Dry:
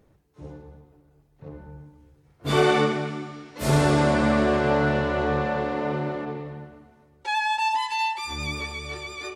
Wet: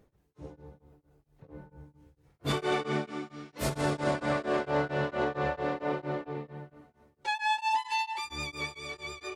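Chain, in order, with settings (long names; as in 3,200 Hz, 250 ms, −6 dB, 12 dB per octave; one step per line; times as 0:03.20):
hum removal 73.9 Hz, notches 3
brickwall limiter −16.5 dBFS, peak gain reduction 8 dB
tremolo along a rectified sine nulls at 4.4 Hz
level −2 dB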